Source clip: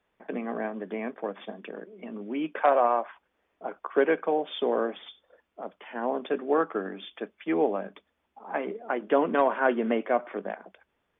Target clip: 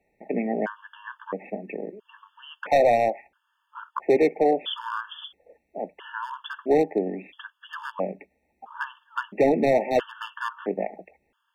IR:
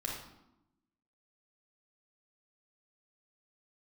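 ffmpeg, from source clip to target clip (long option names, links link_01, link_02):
-af "asetrate=42777,aresample=44100,asoftclip=type=hard:threshold=-19.5dB,afftfilt=real='re*gt(sin(2*PI*0.75*pts/sr)*(1-2*mod(floor(b*sr/1024/900),2)),0)':imag='im*gt(sin(2*PI*0.75*pts/sr)*(1-2*mod(floor(b*sr/1024/900),2)),0)':win_size=1024:overlap=0.75,volume=6.5dB"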